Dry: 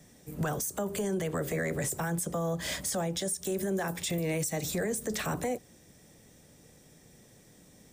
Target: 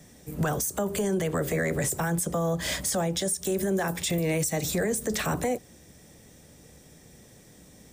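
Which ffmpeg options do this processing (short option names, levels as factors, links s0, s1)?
-af "equalizer=f=68:t=o:w=0.26:g=8,volume=1.68"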